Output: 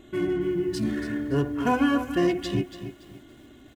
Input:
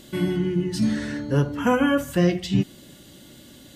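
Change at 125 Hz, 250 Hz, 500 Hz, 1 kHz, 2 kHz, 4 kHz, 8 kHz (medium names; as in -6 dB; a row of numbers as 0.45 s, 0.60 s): -7.5 dB, -2.5 dB, -1.5 dB, -0.5 dB, -2.5 dB, -4.0 dB, -6.5 dB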